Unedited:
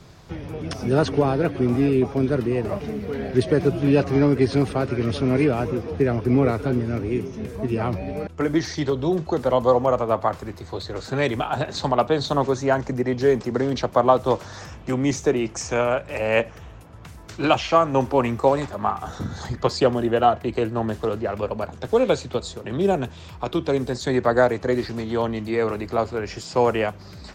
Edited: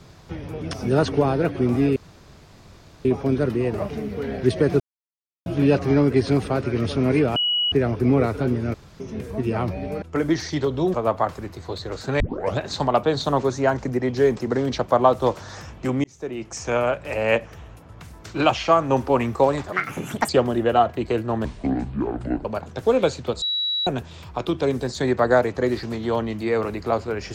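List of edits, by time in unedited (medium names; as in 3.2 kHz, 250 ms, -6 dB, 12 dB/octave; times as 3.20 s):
1.96 s: insert room tone 1.09 s
3.71 s: insert silence 0.66 s
5.61–5.97 s: bleep 2.92 kHz -18.5 dBFS
6.99–7.25 s: room tone
9.19–9.98 s: delete
11.24 s: tape start 0.39 s
15.08–15.84 s: fade in
18.76–19.76 s: speed 176%
20.92–21.51 s: speed 59%
22.48–22.93 s: bleep 3.9 kHz -21 dBFS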